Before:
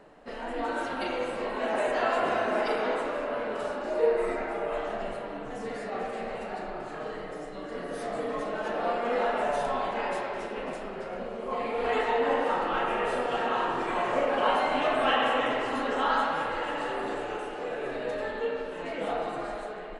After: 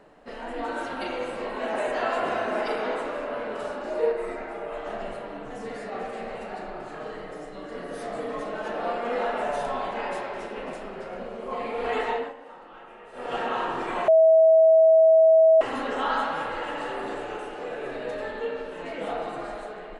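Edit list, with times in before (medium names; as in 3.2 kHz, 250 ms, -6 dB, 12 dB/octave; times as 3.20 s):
4.12–4.86 s: gain -3 dB
12.11–13.35 s: dip -18 dB, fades 0.22 s
14.08–15.61 s: bleep 645 Hz -12.5 dBFS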